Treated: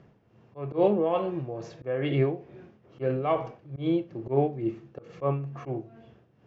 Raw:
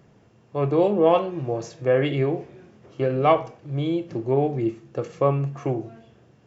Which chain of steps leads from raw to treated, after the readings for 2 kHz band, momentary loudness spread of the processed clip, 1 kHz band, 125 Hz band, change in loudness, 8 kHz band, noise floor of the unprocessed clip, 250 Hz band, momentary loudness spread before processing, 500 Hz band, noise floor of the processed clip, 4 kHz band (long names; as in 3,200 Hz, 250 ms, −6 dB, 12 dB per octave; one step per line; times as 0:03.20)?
−7.5 dB, 12 LU, −7.5 dB, −5.5 dB, −5.5 dB, can't be measured, −56 dBFS, −4.5 dB, 12 LU, −6.0 dB, −62 dBFS, −7.5 dB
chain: amplitude tremolo 2.3 Hz, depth 68%
high-frequency loss of the air 160 metres
volume swells 116 ms